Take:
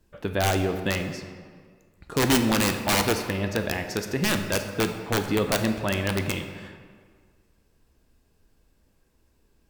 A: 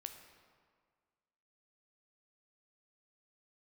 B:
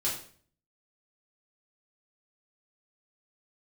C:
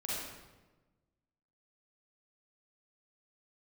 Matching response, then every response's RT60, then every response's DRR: A; 1.8, 0.50, 1.2 seconds; 6.0, −7.5, −7.0 decibels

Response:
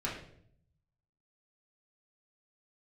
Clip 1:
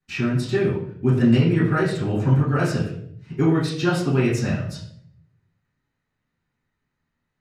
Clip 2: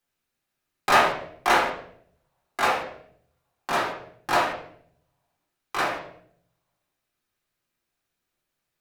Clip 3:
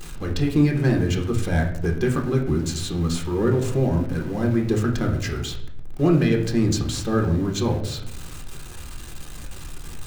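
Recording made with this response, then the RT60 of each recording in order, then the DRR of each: 2; 0.65, 0.65, 0.65 seconds; −14.0, −6.0, 1.5 decibels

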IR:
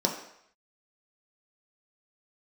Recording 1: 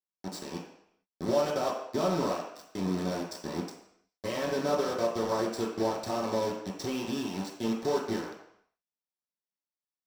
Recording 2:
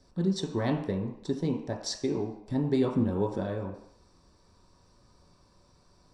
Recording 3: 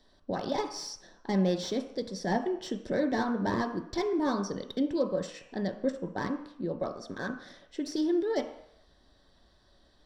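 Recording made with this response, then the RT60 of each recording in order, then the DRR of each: 2; 0.70, 0.70, 0.70 seconds; −5.0, 0.0, 4.5 decibels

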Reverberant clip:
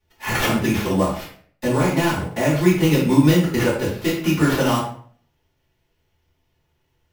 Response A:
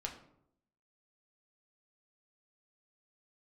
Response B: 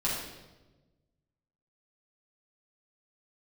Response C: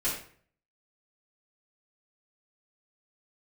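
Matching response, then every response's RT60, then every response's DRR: C; 0.75, 1.2, 0.50 seconds; 1.0, −7.5, −9.5 decibels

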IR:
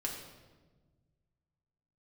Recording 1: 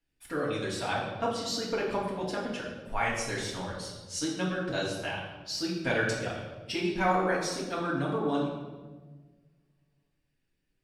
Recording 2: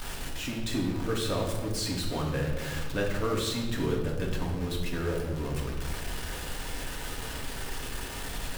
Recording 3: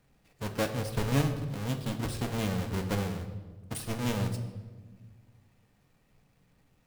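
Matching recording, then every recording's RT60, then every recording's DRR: 2; 1.3 s, 1.3 s, non-exponential decay; −5.5, −1.5, 5.5 decibels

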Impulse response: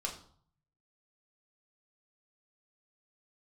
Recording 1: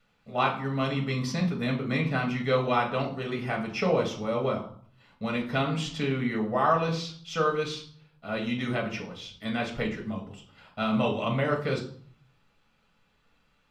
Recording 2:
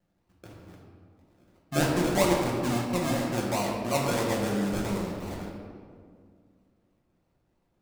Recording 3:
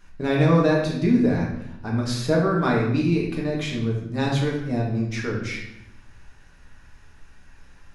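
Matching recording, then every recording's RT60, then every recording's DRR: 1; 0.55, 2.1, 0.85 seconds; −1.0, −4.0, −3.5 decibels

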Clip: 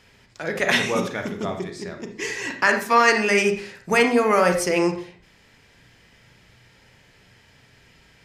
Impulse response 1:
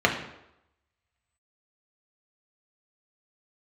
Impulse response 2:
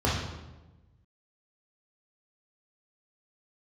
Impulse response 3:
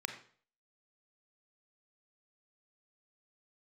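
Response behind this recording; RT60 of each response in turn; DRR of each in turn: 3; 0.85, 1.1, 0.45 seconds; 0.0, −5.5, 5.5 decibels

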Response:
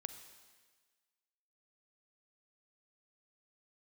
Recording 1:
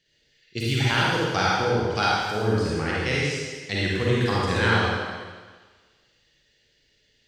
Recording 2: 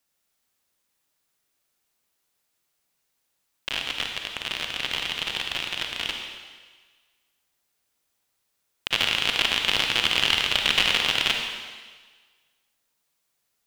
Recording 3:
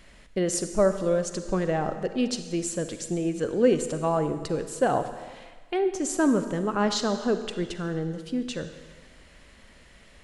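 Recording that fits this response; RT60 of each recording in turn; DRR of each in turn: 3; 1.4, 1.4, 1.5 seconds; −6.5, 2.5, 9.0 decibels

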